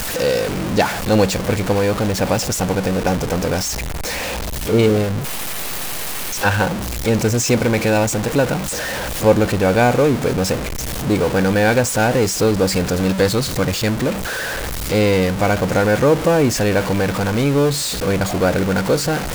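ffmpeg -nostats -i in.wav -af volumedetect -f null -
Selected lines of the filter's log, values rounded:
mean_volume: -17.7 dB
max_volume: -2.2 dB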